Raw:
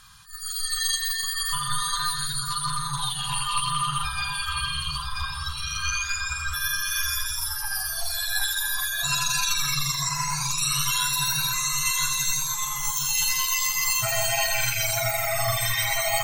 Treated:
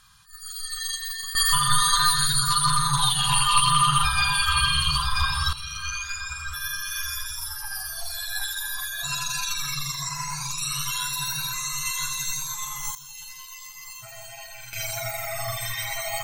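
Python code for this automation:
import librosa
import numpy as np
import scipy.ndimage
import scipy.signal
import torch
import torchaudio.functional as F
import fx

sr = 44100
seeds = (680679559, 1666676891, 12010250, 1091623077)

y = fx.gain(x, sr, db=fx.steps((0.0, -5.0), (1.35, 6.5), (5.53, -4.0), (12.95, -17.0), (14.73, -5.5)))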